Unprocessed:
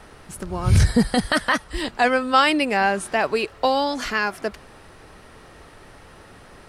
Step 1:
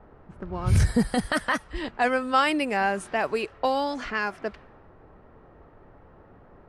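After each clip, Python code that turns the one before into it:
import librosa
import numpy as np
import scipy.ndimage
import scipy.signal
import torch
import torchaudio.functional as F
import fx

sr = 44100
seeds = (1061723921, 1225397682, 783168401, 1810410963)

y = fx.env_lowpass(x, sr, base_hz=880.0, full_db=-17.0)
y = fx.dynamic_eq(y, sr, hz=4100.0, q=1.4, threshold_db=-41.0, ratio=4.0, max_db=-5)
y = F.gain(torch.from_numpy(y), -4.5).numpy()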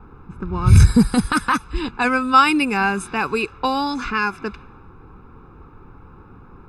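y = x + 0.99 * np.pad(x, (int(0.8 * sr / 1000.0), 0))[:len(x)]
y = F.gain(torch.from_numpy(y), 4.5).numpy()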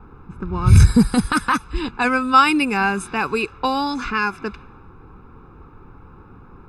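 y = x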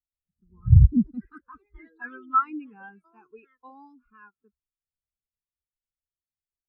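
y = fx.echo_pitch(x, sr, ms=158, semitones=4, count=2, db_per_echo=-6.0)
y = fx.spectral_expand(y, sr, expansion=2.5)
y = F.gain(torch.from_numpy(y), -4.0).numpy()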